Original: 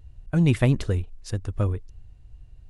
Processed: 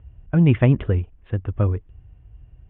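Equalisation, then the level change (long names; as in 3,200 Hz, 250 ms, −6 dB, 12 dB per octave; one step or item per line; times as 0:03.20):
high-pass filter 43 Hz
Butterworth low-pass 3,400 Hz 96 dB per octave
high-frequency loss of the air 280 metres
+4.5 dB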